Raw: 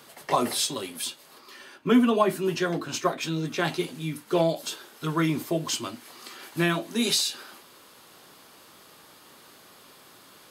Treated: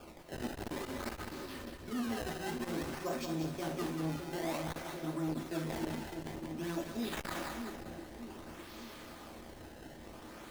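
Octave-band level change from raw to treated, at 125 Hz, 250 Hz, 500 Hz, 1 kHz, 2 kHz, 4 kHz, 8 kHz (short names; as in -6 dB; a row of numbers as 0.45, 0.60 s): -9.0, -10.5, -12.5, -12.0, -11.0, -16.5, -16.5 dB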